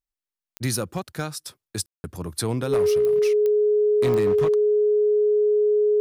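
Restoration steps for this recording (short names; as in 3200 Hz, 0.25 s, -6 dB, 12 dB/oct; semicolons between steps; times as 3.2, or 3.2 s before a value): clip repair -16 dBFS; de-click; notch 420 Hz, Q 30; room tone fill 1.86–2.04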